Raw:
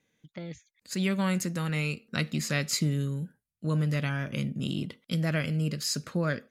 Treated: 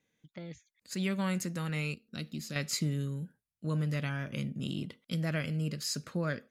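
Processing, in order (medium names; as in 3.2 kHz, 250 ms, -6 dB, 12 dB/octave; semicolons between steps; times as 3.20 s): 1.94–2.56 s: ten-band graphic EQ 125 Hz -7 dB, 500 Hz -5 dB, 1 kHz -10 dB, 2 kHz -10 dB, 8 kHz -7 dB; trim -4.5 dB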